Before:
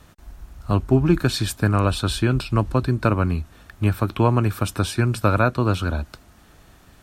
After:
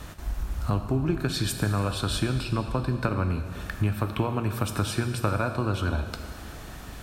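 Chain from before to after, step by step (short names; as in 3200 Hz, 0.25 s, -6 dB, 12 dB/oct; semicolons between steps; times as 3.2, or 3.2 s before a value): compressor 6:1, threshold -33 dBFS, peak gain reduction 19.5 dB; reverb RT60 2.0 s, pre-delay 5 ms, DRR 6 dB; gain +8.5 dB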